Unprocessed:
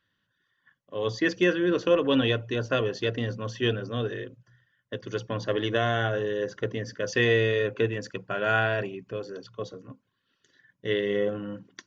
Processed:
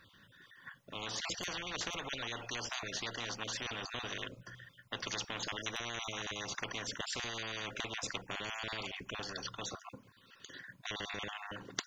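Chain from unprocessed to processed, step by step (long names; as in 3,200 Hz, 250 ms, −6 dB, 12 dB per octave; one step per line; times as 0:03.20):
time-frequency cells dropped at random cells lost 24%
brickwall limiter −20.5 dBFS, peak gain reduction 9 dB
every bin compressed towards the loudest bin 10 to 1
level +5 dB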